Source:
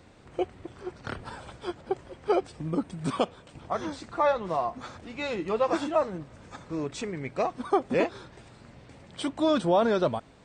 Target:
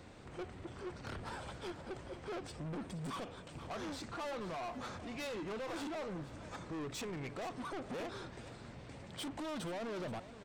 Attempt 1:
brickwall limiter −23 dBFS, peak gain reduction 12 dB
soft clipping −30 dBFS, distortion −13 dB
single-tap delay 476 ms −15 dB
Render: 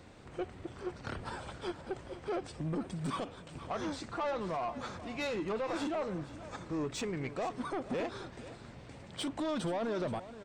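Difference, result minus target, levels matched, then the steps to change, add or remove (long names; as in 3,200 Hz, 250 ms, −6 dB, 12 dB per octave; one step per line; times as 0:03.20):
soft clipping: distortion −8 dB
change: soft clipping −39.5 dBFS, distortion −5 dB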